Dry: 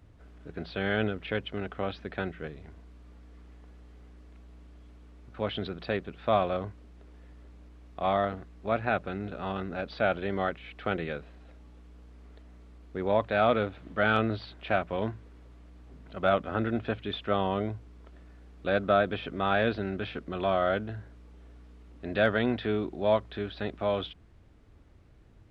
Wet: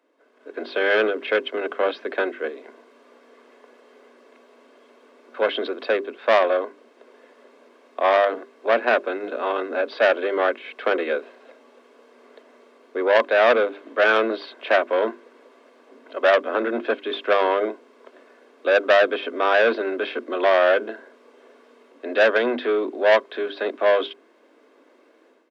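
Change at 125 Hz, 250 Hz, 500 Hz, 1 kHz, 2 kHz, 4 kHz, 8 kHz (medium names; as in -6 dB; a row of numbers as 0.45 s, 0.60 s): under -20 dB, +1.5 dB, +10.0 dB, +7.0 dB, +11.0 dB, +8.5 dB, no reading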